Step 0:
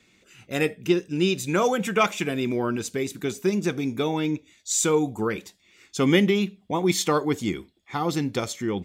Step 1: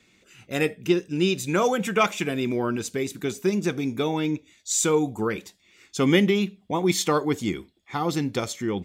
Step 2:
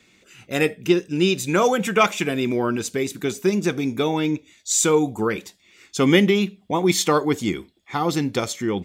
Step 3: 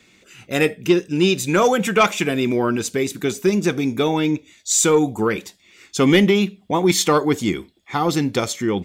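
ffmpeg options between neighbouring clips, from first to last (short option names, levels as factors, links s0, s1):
-af anull
-af "lowshelf=f=160:g=-3,volume=1.58"
-af "asoftclip=type=tanh:threshold=0.447,volume=1.41"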